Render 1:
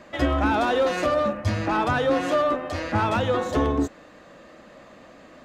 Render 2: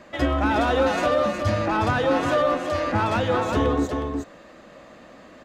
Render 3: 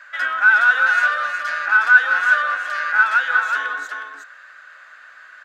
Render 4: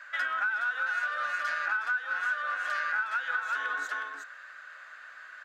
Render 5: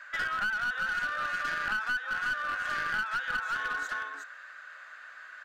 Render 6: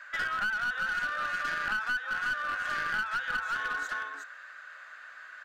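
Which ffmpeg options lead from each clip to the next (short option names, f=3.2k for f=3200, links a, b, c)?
-af "aecho=1:1:363:0.562"
-af "highpass=f=1.5k:t=q:w=12,volume=-1.5dB"
-af "acompressor=threshold=-23dB:ratio=16,volume=-4dB"
-af "aeval=exprs='clip(val(0),-1,0.0355)':c=same"
-af "bandreject=f=60:t=h:w=6,bandreject=f=120:t=h:w=6"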